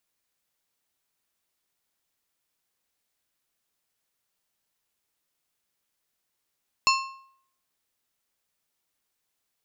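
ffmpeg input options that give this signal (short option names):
-f lavfi -i "aevalsrc='0.126*pow(10,-3*t/0.63)*sin(2*PI*1070*t)+0.1*pow(10,-3*t/0.479)*sin(2*PI*2675*t)+0.0794*pow(10,-3*t/0.416)*sin(2*PI*4280*t)+0.0631*pow(10,-3*t/0.389)*sin(2*PI*5350*t)+0.0501*pow(10,-3*t/0.359)*sin(2*PI*6955*t)':d=1.55:s=44100"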